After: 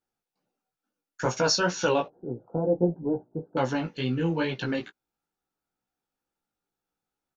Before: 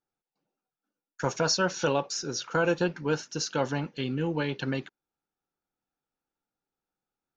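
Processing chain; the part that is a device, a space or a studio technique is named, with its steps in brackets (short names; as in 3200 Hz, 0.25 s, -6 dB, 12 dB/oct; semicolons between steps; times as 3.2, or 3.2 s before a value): 2.06–3.57 elliptic low-pass 760 Hz, stop band 70 dB; double-tracked vocal (doubler 17 ms -13.5 dB; chorus 2.2 Hz, delay 15.5 ms, depth 3.1 ms); gain +5 dB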